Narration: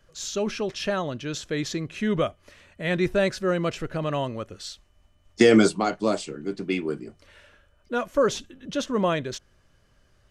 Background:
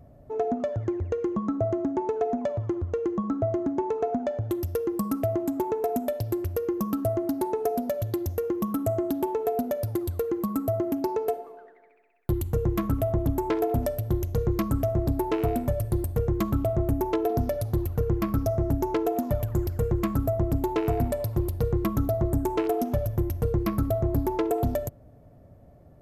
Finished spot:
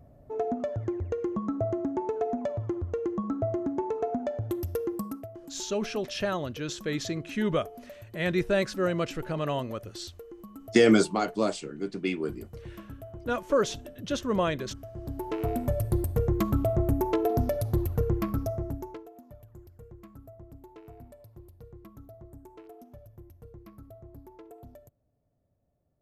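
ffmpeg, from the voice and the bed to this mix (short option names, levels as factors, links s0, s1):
-filter_complex "[0:a]adelay=5350,volume=0.708[s0];[1:a]volume=5.31,afade=t=out:st=4.87:d=0.41:silence=0.177828,afade=t=in:st=14.92:d=0.91:silence=0.133352,afade=t=out:st=17.95:d=1.12:silence=0.0707946[s1];[s0][s1]amix=inputs=2:normalize=0"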